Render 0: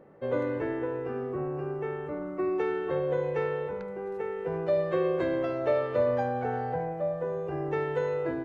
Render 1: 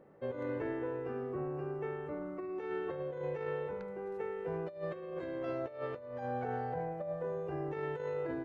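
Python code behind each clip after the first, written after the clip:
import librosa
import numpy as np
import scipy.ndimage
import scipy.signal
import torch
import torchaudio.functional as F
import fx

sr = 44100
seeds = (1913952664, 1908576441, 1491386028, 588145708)

y = fx.over_compress(x, sr, threshold_db=-30.0, ratio=-0.5)
y = y * 10.0 ** (-7.0 / 20.0)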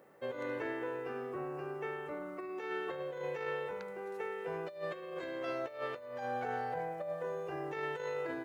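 y = fx.tilt_eq(x, sr, slope=3.5)
y = y * 10.0 ** (2.5 / 20.0)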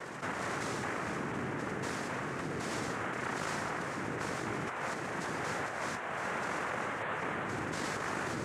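y = fx.noise_vocoder(x, sr, seeds[0], bands=3)
y = fx.env_flatten(y, sr, amount_pct=70)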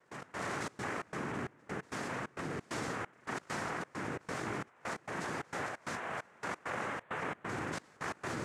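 y = fx.step_gate(x, sr, bpm=133, pattern='.x.xxx.xx.xxx.', floor_db=-24.0, edge_ms=4.5)
y = y * 10.0 ** (-1.5 / 20.0)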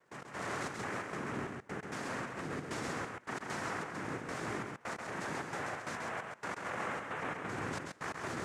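y = x + 10.0 ** (-4.0 / 20.0) * np.pad(x, (int(134 * sr / 1000.0), 0))[:len(x)]
y = y * 10.0 ** (-1.5 / 20.0)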